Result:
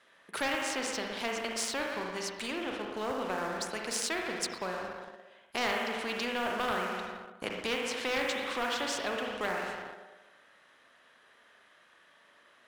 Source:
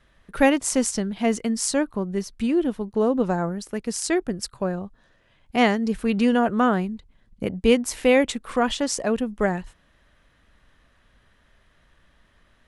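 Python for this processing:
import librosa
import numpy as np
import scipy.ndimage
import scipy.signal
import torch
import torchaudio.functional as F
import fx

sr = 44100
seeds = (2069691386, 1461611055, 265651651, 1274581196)

y = scipy.signal.sosfilt(scipy.signal.butter(2, 440.0, 'highpass', fs=sr, output='sos'), x)
y = fx.rev_spring(y, sr, rt60_s=1.1, pass_ms=(38, 58), chirp_ms=65, drr_db=2.0)
y = fx.env_lowpass_down(y, sr, base_hz=2800.0, full_db=-21.0)
y = fx.leveller(y, sr, passes=1)
y = fx.spectral_comp(y, sr, ratio=2.0)
y = y * 10.0 ** (-8.5 / 20.0)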